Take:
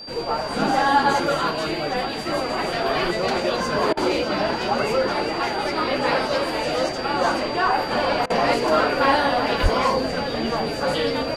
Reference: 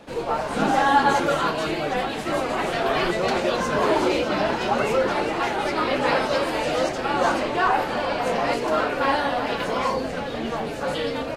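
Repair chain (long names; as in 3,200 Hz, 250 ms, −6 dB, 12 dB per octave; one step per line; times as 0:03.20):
notch filter 4,700 Hz, Q 30
0:09.62–0:09.74: high-pass filter 140 Hz 24 dB per octave
repair the gap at 0:03.93/0:08.26, 40 ms
level 0 dB, from 0:07.91 −3.5 dB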